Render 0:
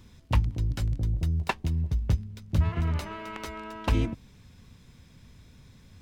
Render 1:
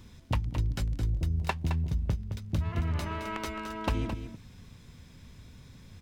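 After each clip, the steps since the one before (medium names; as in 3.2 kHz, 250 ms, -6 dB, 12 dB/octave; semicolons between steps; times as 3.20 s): compression, threshold -27 dBFS, peak gain reduction 10 dB; on a send: delay 216 ms -9 dB; on the sum: trim +1.5 dB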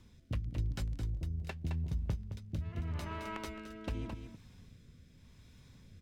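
rotary cabinet horn 0.85 Hz; trim -5.5 dB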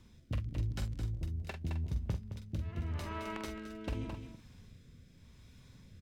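doubling 46 ms -7.5 dB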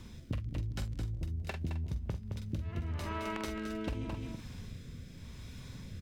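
compression 5:1, threshold -45 dBFS, peak gain reduction 14 dB; trim +10.5 dB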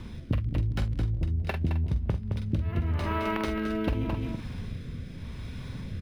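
distance through air 100 m; decimation joined by straight lines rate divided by 3×; trim +9 dB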